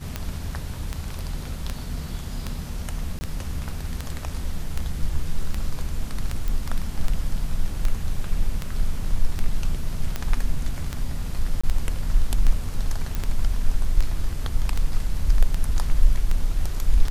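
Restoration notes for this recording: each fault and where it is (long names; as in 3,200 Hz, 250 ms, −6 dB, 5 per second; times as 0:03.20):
scratch tick 78 rpm −12 dBFS
0:03.19–0:03.21: drop-out 20 ms
0:06.48: click
0:11.61–0:11.63: drop-out 25 ms
0:13.15: click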